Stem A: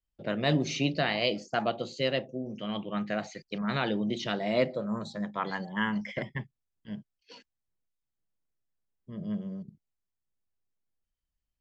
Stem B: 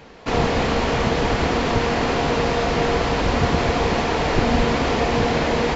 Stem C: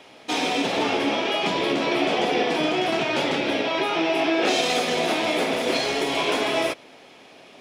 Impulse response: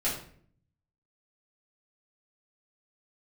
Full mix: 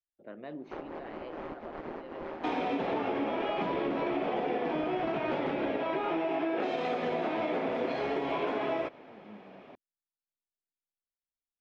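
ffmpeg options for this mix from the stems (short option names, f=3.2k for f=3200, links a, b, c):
-filter_complex "[0:a]volume=-13.5dB,asplit=2[a][b];[1:a]aeval=exprs='val(0)*sin(2*PI*80*n/s)':c=same,adelay=450,volume=-6.5dB[c];[2:a]adelay=2150,volume=-2dB[d];[b]apad=whole_len=273720[e];[c][e]sidechaincompress=threshold=-50dB:ratio=6:attack=41:release=129[f];[a][f]amix=inputs=2:normalize=0,lowshelf=f=200:t=q:w=1.5:g=-10,acompressor=threshold=-36dB:ratio=10,volume=0dB[g];[d][g]amix=inputs=2:normalize=0,lowpass=1.6k,acompressor=threshold=-28dB:ratio=6"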